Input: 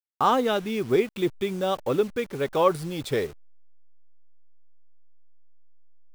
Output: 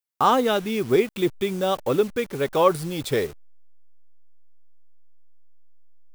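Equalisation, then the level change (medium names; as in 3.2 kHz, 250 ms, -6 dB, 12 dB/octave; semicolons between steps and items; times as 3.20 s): treble shelf 7.6 kHz +5.5 dB; +2.5 dB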